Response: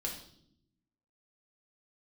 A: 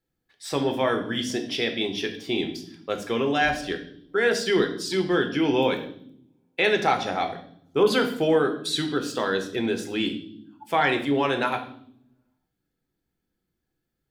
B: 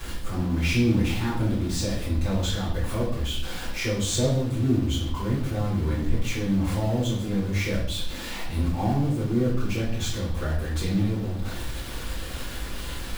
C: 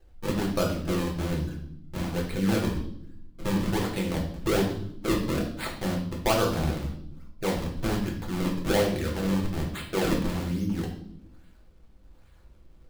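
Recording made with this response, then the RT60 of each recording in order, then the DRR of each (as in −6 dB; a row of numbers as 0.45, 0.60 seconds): C; non-exponential decay, non-exponential decay, non-exponential decay; 4.5, −10.5, −1.5 decibels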